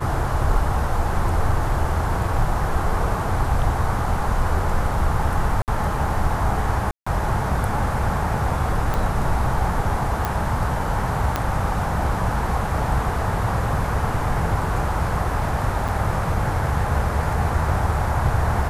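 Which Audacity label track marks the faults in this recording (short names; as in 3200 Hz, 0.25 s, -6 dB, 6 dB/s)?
5.620000	5.680000	gap 58 ms
6.910000	7.070000	gap 0.155 s
8.940000	8.940000	pop
10.250000	10.250000	pop
11.360000	11.360000	pop -7 dBFS
15.880000	15.890000	gap 6.2 ms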